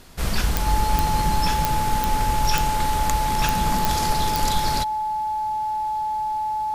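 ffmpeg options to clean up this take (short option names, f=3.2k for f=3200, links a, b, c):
-af "adeclick=t=4,bandreject=f=860:w=30"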